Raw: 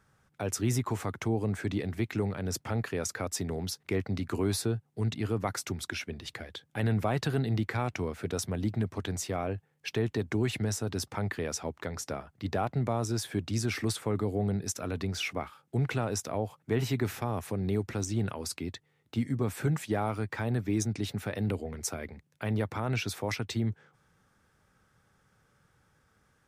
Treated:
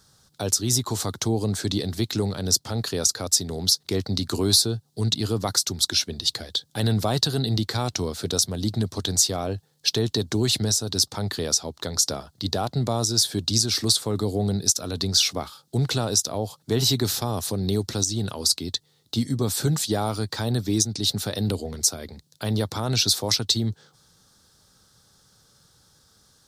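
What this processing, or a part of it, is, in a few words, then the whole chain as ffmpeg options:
over-bright horn tweeter: -af "highshelf=frequency=3100:width_type=q:width=3:gain=10.5,alimiter=limit=-12dB:level=0:latency=1:release=347,volume=5.5dB"

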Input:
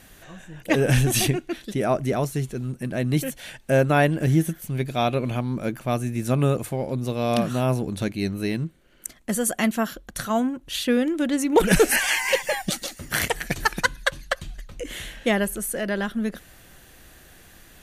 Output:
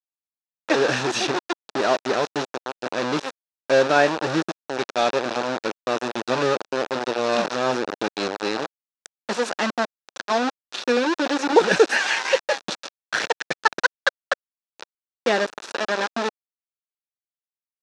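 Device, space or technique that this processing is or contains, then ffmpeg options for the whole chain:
hand-held game console: -af "acrusher=bits=3:mix=0:aa=0.000001,highpass=450,equalizer=frequency=670:width_type=q:width=4:gain=-4,equalizer=frequency=1100:width_type=q:width=4:gain=-4,equalizer=frequency=2100:width_type=q:width=4:gain=-10,equalizer=frequency=3100:width_type=q:width=4:gain=-8,equalizer=frequency=4600:width_type=q:width=4:gain=-5,lowpass=frequency=5000:width=0.5412,lowpass=frequency=5000:width=1.3066,volume=6dB"

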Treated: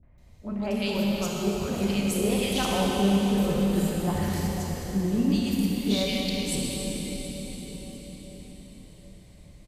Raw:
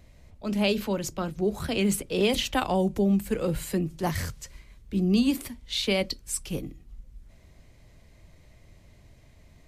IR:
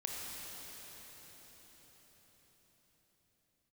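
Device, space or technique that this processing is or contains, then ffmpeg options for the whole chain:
cathedral: -filter_complex "[0:a]acrossover=split=440|2000[link_01][link_02][link_03];[link_02]adelay=30[link_04];[link_03]adelay=180[link_05];[link_01][link_04][link_05]amix=inputs=3:normalize=0[link_06];[1:a]atrim=start_sample=2205[link_07];[link_06][link_07]afir=irnorm=-1:irlink=0"

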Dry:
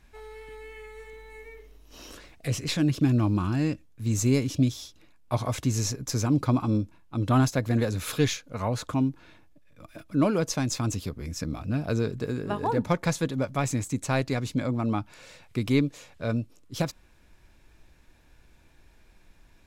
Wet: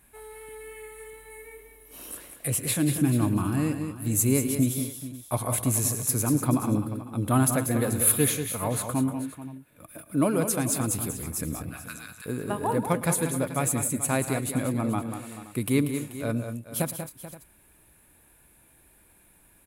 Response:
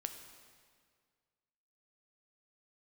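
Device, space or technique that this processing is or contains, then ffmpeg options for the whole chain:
budget condenser microphone: -filter_complex "[0:a]asettb=1/sr,asplit=3[link_01][link_02][link_03];[link_01]atrim=end=11.694[link_04];[link_02]atrim=start=11.69:end=12.26,asetpts=PTS-STARTPTS,afade=type=in:duration=0.004:curve=qsin,afade=type=out:start_time=0.566:duration=0.004:curve=qsin,highpass=frequency=1200:width=0.5412,highpass=frequency=1200:width=1.3066[link_05];[link_03]atrim=start=12.256[link_06];[link_04][link_05]acrossfade=duration=0.004:curve1=hsin:curve2=qsin[link_07];[link_07][link_06]acrossfade=duration=0.004:curve1=qsin:curve2=hsin,highpass=frequency=100:poles=1,highshelf=frequency=7600:width_type=q:width=3:gain=12.5,aecho=1:1:111|188|214|434|524:0.141|0.376|0.126|0.188|0.112"

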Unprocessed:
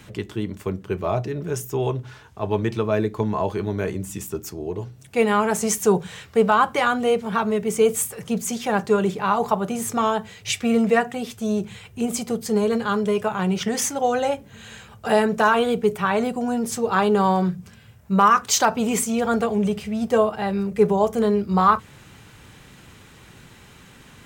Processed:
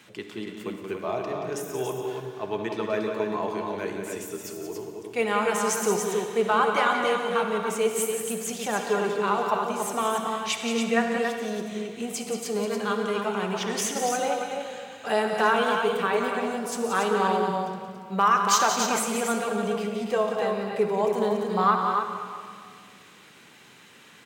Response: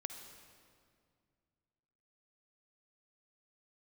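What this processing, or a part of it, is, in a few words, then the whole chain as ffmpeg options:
stadium PA: -filter_complex "[0:a]highpass=230,equalizer=frequency=2900:width_type=o:width=2.3:gain=4,aecho=1:1:177.8|282.8:0.398|0.501[link_01];[1:a]atrim=start_sample=2205[link_02];[link_01][link_02]afir=irnorm=-1:irlink=0,volume=-4dB"

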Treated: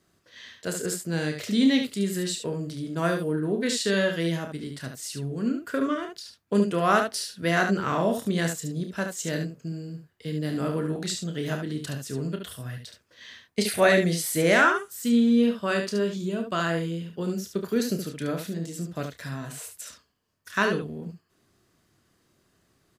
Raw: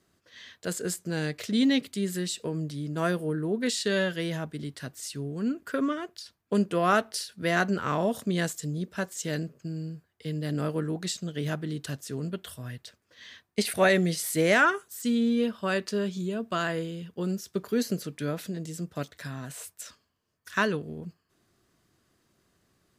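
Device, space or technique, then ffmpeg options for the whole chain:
slapback doubling: -filter_complex "[0:a]asplit=3[link_01][link_02][link_03];[link_02]adelay=30,volume=-8dB[link_04];[link_03]adelay=72,volume=-6.5dB[link_05];[link_01][link_04][link_05]amix=inputs=3:normalize=0,volume=1dB"

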